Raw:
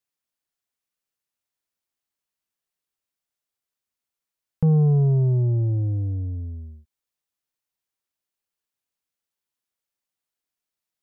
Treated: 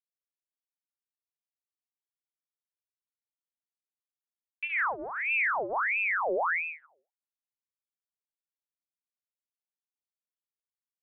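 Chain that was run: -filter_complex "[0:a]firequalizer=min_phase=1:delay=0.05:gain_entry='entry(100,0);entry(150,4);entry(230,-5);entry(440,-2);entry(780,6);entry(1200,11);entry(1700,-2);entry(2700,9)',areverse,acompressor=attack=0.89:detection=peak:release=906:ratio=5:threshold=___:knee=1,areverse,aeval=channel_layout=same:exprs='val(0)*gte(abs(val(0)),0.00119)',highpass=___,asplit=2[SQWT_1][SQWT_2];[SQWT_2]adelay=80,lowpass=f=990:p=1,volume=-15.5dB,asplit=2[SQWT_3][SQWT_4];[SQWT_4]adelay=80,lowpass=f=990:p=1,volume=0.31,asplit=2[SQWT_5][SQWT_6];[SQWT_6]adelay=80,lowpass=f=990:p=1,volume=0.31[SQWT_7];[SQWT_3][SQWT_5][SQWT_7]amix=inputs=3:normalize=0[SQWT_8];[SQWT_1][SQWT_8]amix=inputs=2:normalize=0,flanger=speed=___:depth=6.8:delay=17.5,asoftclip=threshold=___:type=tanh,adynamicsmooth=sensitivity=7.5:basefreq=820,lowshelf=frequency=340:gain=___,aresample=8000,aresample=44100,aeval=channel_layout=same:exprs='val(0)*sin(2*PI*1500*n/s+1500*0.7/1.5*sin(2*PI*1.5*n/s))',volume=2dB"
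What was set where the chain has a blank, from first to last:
-30dB, 45, 1, -28.5dB, 7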